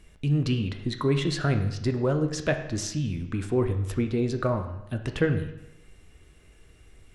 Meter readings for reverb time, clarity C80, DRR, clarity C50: 0.85 s, 11.5 dB, 6.0 dB, 9.0 dB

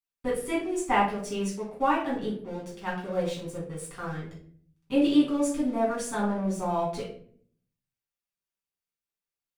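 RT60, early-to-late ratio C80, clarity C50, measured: 0.55 s, 10.0 dB, 5.0 dB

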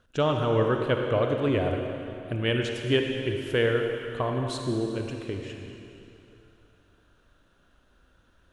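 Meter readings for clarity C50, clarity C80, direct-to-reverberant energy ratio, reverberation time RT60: 3.0 dB, 4.0 dB, 2.5 dB, 2.9 s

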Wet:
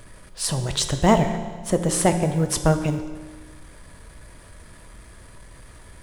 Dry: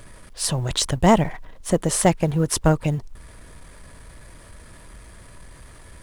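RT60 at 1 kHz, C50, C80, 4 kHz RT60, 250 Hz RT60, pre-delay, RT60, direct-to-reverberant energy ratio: 1.5 s, 9.0 dB, 10.5 dB, 1.4 s, 1.5 s, 6 ms, 1.5 s, 7.0 dB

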